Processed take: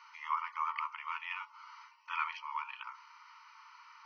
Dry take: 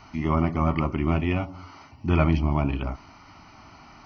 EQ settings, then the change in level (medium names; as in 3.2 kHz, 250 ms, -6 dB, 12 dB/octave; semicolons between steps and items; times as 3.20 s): brick-wall FIR high-pass 870 Hz; treble shelf 3.8 kHz -8 dB; -3.5 dB